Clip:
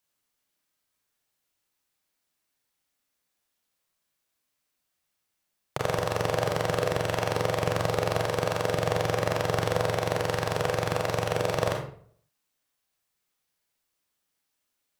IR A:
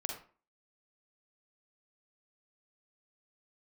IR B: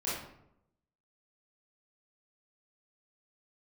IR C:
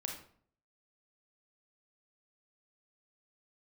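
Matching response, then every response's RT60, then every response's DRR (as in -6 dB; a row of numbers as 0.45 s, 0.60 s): C; 0.40 s, 0.75 s, 0.55 s; 1.5 dB, -10.0 dB, 1.0 dB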